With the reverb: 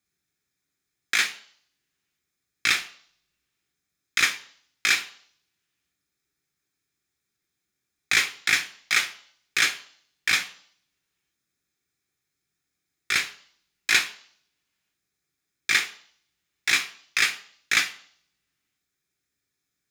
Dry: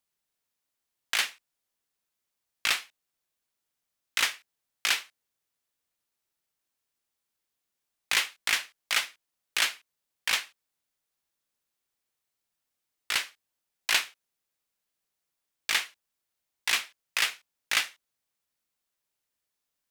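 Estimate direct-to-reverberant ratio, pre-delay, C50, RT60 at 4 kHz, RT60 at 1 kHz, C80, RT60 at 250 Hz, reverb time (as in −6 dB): 7.5 dB, 3 ms, 16.5 dB, 0.65 s, 0.55 s, 19.5 dB, 0.55 s, 0.55 s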